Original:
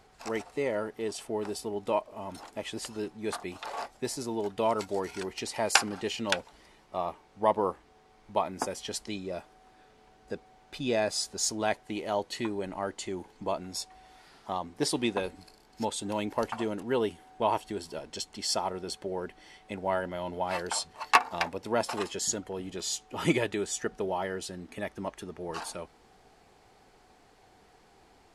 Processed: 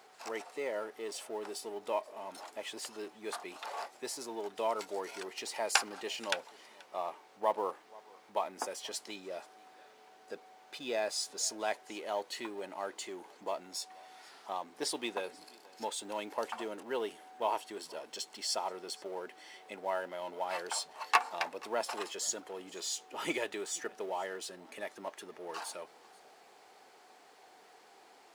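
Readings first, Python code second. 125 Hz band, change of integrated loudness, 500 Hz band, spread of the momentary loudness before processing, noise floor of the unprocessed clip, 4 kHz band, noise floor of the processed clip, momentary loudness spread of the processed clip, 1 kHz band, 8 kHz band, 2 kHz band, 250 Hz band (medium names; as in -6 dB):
under -20 dB, -5.5 dB, -6.0 dB, 11 LU, -60 dBFS, -4.0 dB, -60 dBFS, 13 LU, -5.0 dB, -4.0 dB, -5.0 dB, -11.5 dB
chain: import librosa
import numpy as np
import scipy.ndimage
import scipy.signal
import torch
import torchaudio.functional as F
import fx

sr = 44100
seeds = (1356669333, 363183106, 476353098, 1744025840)

y = fx.law_mismatch(x, sr, coded='mu')
y = scipy.signal.sosfilt(scipy.signal.butter(2, 420.0, 'highpass', fs=sr, output='sos'), y)
y = y + 10.0 ** (-24.0 / 20.0) * np.pad(y, (int(482 * sr / 1000.0), 0))[:len(y)]
y = y * 10.0 ** (-5.5 / 20.0)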